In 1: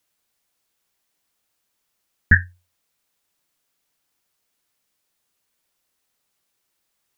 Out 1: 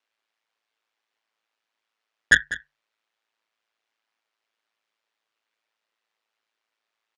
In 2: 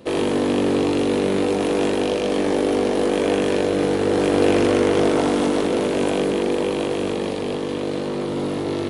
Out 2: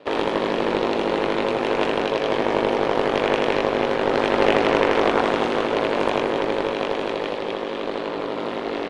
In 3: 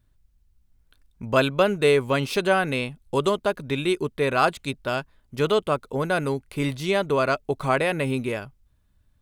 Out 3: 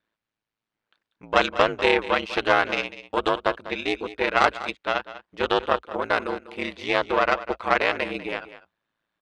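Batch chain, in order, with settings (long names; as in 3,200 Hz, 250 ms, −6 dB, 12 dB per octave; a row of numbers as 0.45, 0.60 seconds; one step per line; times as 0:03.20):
band-pass filter 270–3,100 Hz
harmonic generator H 6 −17 dB, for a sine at −3 dBFS
ring modulation 55 Hz
low-shelf EQ 400 Hz −11 dB
single-tap delay 197 ms −15 dB
normalise the peak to −1.5 dBFS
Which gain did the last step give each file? +3.5, +6.5, +5.0 decibels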